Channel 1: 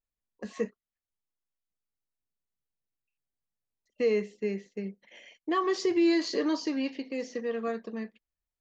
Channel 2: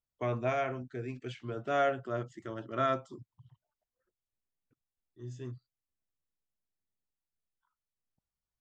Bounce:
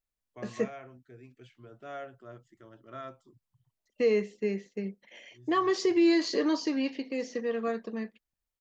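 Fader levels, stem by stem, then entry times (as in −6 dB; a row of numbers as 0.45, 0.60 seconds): +1.0, −12.5 decibels; 0.00, 0.15 seconds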